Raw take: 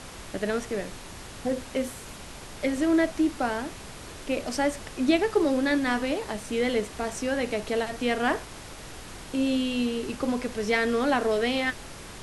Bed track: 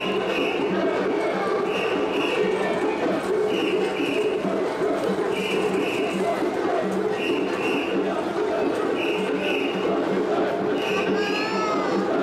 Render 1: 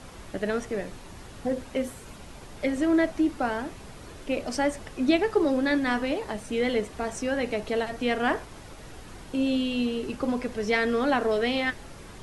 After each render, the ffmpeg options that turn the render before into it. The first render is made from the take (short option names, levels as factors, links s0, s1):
-af "afftdn=nr=7:nf=-43"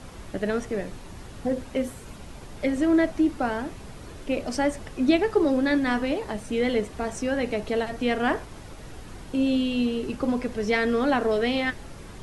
-af "lowshelf=f=340:g=4"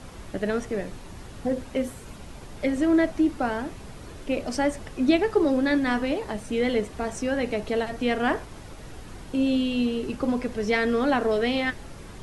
-af anull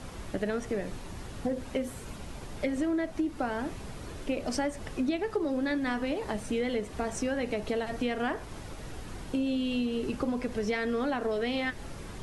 -af "acompressor=threshold=0.0447:ratio=6"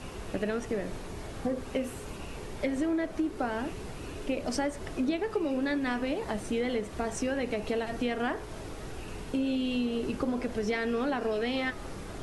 -filter_complex "[1:a]volume=0.0668[s0];[0:a][s0]amix=inputs=2:normalize=0"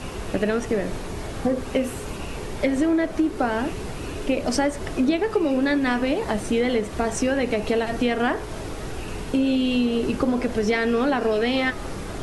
-af "volume=2.66"